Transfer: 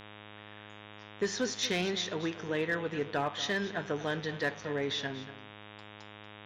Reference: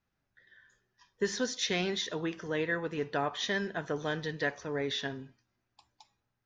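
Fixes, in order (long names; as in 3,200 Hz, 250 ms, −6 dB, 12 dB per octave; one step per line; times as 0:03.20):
clipped peaks rebuilt −23 dBFS
hum removal 104.7 Hz, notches 36
echo removal 236 ms −14.5 dB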